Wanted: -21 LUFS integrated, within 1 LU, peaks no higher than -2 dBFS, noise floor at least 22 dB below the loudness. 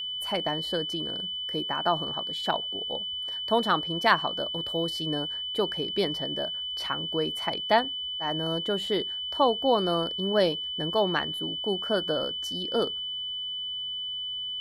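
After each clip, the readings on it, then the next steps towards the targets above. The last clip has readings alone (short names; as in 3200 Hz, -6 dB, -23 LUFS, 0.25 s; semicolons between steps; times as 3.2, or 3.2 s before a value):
ticks 38/s; steady tone 3000 Hz; tone level -31 dBFS; loudness -27.5 LUFS; peak -6.0 dBFS; loudness target -21.0 LUFS
-> de-click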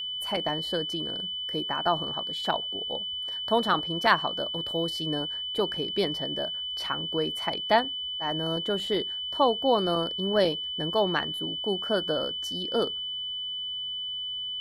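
ticks 0.068/s; steady tone 3000 Hz; tone level -31 dBFS
-> notch 3000 Hz, Q 30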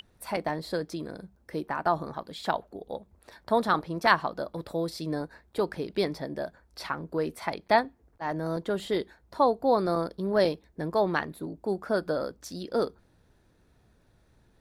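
steady tone none; loudness -30.0 LUFS; peak -6.5 dBFS; loudness target -21.0 LUFS
-> gain +9 dB; limiter -2 dBFS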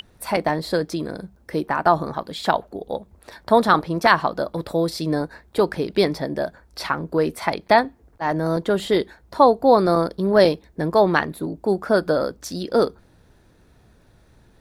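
loudness -21.0 LUFS; peak -2.0 dBFS; noise floor -56 dBFS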